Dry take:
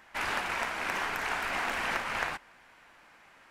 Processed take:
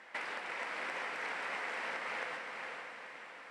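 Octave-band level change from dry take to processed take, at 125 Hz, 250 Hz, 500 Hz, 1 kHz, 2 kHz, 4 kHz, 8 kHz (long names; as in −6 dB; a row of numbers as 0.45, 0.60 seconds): below −15 dB, −10.0 dB, −5.0 dB, −8.0 dB, −6.0 dB, −8.5 dB, −12.0 dB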